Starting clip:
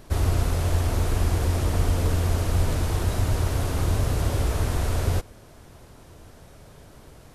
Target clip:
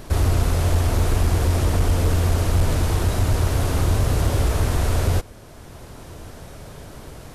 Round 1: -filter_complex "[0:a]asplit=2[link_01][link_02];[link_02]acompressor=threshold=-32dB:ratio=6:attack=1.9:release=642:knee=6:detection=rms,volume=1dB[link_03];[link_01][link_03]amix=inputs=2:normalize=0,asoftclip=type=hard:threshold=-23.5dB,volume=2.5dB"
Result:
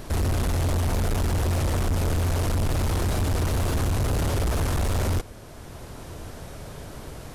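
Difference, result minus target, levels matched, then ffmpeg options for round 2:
hard clipping: distortion +15 dB
-filter_complex "[0:a]asplit=2[link_01][link_02];[link_02]acompressor=threshold=-32dB:ratio=6:attack=1.9:release=642:knee=6:detection=rms,volume=1dB[link_03];[link_01][link_03]amix=inputs=2:normalize=0,asoftclip=type=hard:threshold=-14dB,volume=2.5dB"

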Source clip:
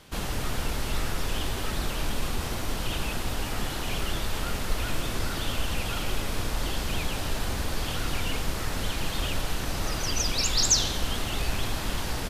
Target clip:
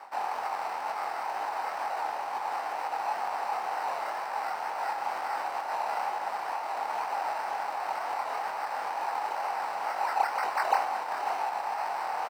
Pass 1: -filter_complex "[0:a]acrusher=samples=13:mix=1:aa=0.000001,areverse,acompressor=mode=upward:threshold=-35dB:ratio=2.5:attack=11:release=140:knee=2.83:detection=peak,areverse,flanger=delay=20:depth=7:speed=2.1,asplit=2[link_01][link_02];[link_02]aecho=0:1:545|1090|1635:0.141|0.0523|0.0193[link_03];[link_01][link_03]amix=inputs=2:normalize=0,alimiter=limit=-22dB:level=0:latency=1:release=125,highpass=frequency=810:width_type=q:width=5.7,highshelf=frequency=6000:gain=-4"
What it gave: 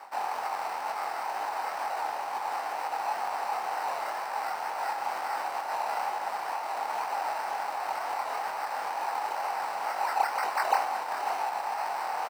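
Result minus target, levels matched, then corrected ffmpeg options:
8,000 Hz band +3.5 dB
-filter_complex "[0:a]acrusher=samples=13:mix=1:aa=0.000001,areverse,acompressor=mode=upward:threshold=-35dB:ratio=2.5:attack=11:release=140:knee=2.83:detection=peak,areverse,flanger=delay=20:depth=7:speed=2.1,asplit=2[link_01][link_02];[link_02]aecho=0:1:545|1090|1635:0.141|0.0523|0.0193[link_03];[link_01][link_03]amix=inputs=2:normalize=0,alimiter=limit=-22dB:level=0:latency=1:release=125,highpass=frequency=810:width_type=q:width=5.7,highshelf=frequency=6000:gain=-10.5"

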